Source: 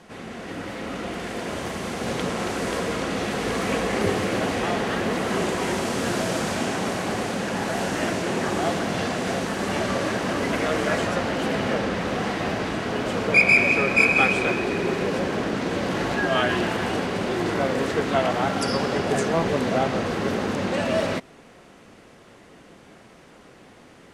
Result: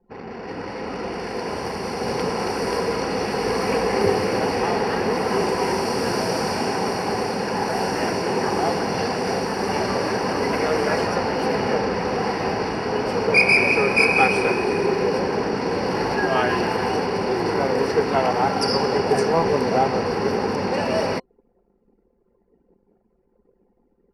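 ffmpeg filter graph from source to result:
-filter_complex "[0:a]asettb=1/sr,asplit=3[a][b][c];[a]atrim=end=13.364[d];[b]atrim=start=13.36:end=14.87,asetpts=PTS-STARTPTS,afade=t=in:d=0.004:c=qsin,afade=t=out:st=1.506:d=0.004:c=qsin,equalizer=f=9.3k:t=o:w=0.4:g=6,asplit=2[e][f];[f]adelay=30,volume=-13dB[g];[e][g]amix=inputs=2:normalize=0,atrim=end_sample=66591[h];[c]atrim=start=14.866[i];[d][h]acrossfade=d=0.004:c1=hsin:c2=qsin[j];[j][i]acrossfade=d=0.004:c1=qsin:c2=hsin,anlmdn=1,superequalizer=7b=2:9b=2.24:13b=0.355:14b=2.24:15b=0.316"

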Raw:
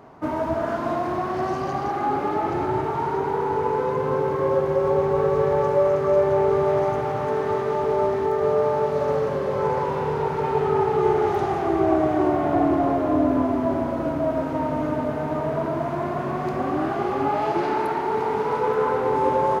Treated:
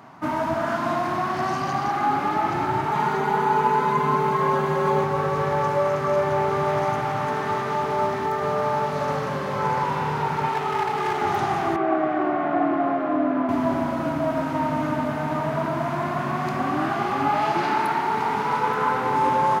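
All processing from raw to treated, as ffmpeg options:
-filter_complex "[0:a]asettb=1/sr,asplit=3[a][b][c];[a]atrim=end=2.914[d];[b]atrim=start=2.91:end=5.04,asetpts=PTS-STARTPTS,afade=t=in:d=0.004:c=qsin,afade=t=out:st=2.126:d=0.004:c=qsin,bandreject=f=5.3k:w=10,aecho=1:1:4.8:0.92,atrim=end_sample=93933[e];[c]atrim=start=5.036[f];[d][e]acrossfade=d=0.004:c1=hsin:c2=qsin[g];[g][f]acrossfade=d=0.004:c1=qsin:c2=hsin,asettb=1/sr,asplit=3[h][i][j];[h]atrim=end=10.494[k];[i]atrim=start=10.49:end=11.22,asetpts=PTS-STARTPTS,afade=t=in:d=0.004:c=qsin,afade=t=out:st=0.726:d=0.004:c=qsin,highpass=f=290:p=1,equalizer=f=1.6k:w=6.5:g=-6.5,asoftclip=type=hard:threshold=-18.5dB[l];[j]atrim=start=11.216[m];[k][l]acrossfade=d=0.004:c1=hsin:c2=qsin[n];[n][m]acrossfade=d=0.004:c1=qsin:c2=hsin,asettb=1/sr,asplit=3[o][p][q];[o]atrim=end=11.764[r];[p]atrim=start=11.76:end=13.49,asetpts=PTS-STARTPTS,afade=t=in:d=0.004:c=qsin,afade=t=out:st=1.726:d=0.004:c=qsin,highpass=260,lowpass=2.2k,bandreject=f=940:w=6[s];[q]atrim=start=13.486[t];[r][s]acrossfade=d=0.004:c1=hsin:c2=qsin[u];[u][t]acrossfade=d=0.004:c1=qsin:c2=hsin,highpass=150,equalizer=f=450:w=1.3:g=-15,volume=6.5dB"

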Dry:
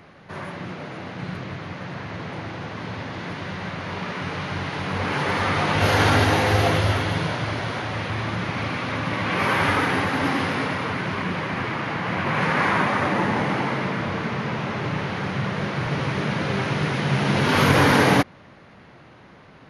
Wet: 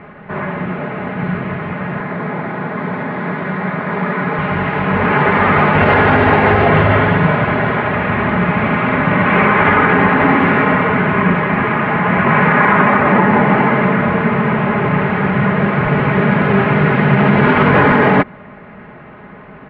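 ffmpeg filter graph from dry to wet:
-filter_complex "[0:a]asettb=1/sr,asplit=3[a][b][c];[a]atrim=end=2.004[d];[b]atrim=start=2:end=4.39,asetpts=PTS-STARTPTS,afade=t=in:d=0.004:c=qsin,afade=t=out:st=2.386:d=0.004:c=qsin,highpass=f=130:w=0.5412,highpass=f=130:w=1.3066,equalizer=f=2.8k:w=3.9:g=-6.5[e];[c]atrim=start=4.386[f];[d][e]acrossfade=d=0.004:c1=hsin:c2=qsin[g];[g][f]acrossfade=d=0.004:c1=qsin:c2=hsin,asettb=1/sr,asplit=3[h][i][j];[h]atrim=end=6.674[k];[i]atrim=start=6.67:end=11.34,asetpts=PTS-STARTPTS,afade=t=in:d=0.004:c=qsin,afade=t=out:st=4.666:d=0.004:c=qsin,lowpass=5.1k,aecho=1:1:78:0.473,atrim=end_sample=205947[l];[j]atrim=start=11.336[m];[k][l]acrossfade=d=0.004:c1=hsin:c2=qsin[n];[n][m]acrossfade=d=0.004:c1=qsin:c2=hsin,lowpass=f=2.3k:w=0.5412,lowpass=f=2.3k:w=1.3066,aecho=1:1:4.8:0.52,alimiter=level_in=12dB:limit=-1dB:release=50:level=0:latency=1,volume=-1dB"

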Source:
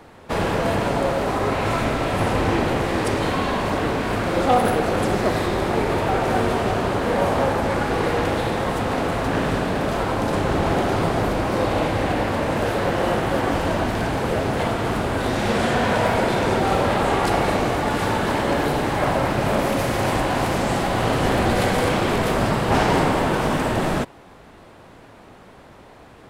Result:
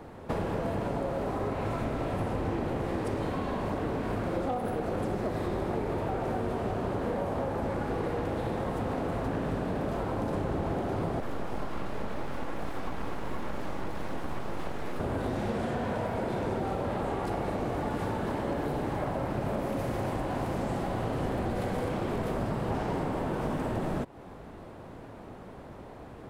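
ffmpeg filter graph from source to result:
-filter_complex "[0:a]asettb=1/sr,asplit=3[a][b][c];[a]atrim=end=11.204[d];[b]atrim=start=11.2:end=15,asetpts=PTS-STARTPTS,afade=t=in:d=0.004:c=qsin,afade=t=out:st=3.796:d=0.004:c=qsin,flanger=delay=16:depth=5.7:speed=1.6,aecho=1:1:3.6:0.49,atrim=end_sample=167580,aeval=exprs='abs(val(0))':c=same[e];[c]atrim=start=14.996[f];[d][e]acrossfade=d=0.004:c1=hsin:c2=qsin[g];[g][f]acrossfade=d=0.004:c1=qsin:c2=hsin,highshelf=f=10k:g=6,acompressor=threshold=-29dB:ratio=6,tiltshelf=f=1.3k:g=6,volume=-4dB"

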